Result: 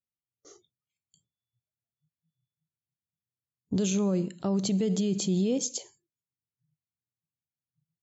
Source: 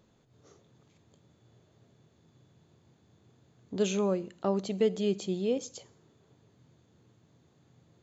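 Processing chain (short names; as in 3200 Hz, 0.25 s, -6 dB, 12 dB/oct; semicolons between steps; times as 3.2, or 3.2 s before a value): spectral noise reduction 30 dB; gate with hold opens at -59 dBFS; tone controls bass +13 dB, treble +11 dB; limiter -22.5 dBFS, peak gain reduction 10.5 dB; gain +3 dB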